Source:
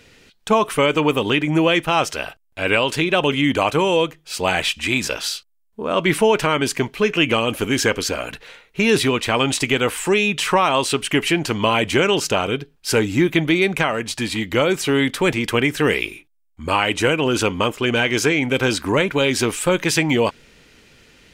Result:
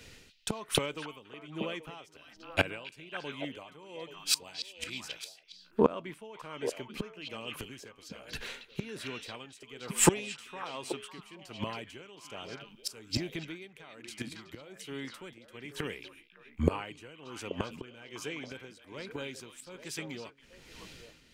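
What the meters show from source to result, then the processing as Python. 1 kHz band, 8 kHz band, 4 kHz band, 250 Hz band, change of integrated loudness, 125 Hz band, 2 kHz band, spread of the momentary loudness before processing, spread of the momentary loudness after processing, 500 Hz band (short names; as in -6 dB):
-19.5 dB, -10.0 dB, -16.5 dB, -18.0 dB, -17.0 dB, -16.5 dB, -20.5 dB, 7 LU, 18 LU, -18.5 dB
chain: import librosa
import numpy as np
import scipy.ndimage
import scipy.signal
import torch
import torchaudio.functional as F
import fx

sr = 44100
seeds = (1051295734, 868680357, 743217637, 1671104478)

y = fx.bass_treble(x, sr, bass_db=1, treble_db=3)
y = fx.gate_flip(y, sr, shuts_db=-14.0, range_db=-24)
y = fx.echo_stepped(y, sr, ms=277, hz=3600.0, octaves=-1.4, feedback_pct=70, wet_db=-0.5)
y = y * (1.0 - 0.68 / 2.0 + 0.68 / 2.0 * np.cos(2.0 * np.pi * 1.2 * (np.arange(len(y)) / sr)))
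y = fx.band_widen(y, sr, depth_pct=40)
y = y * 10.0 ** (1.5 / 20.0)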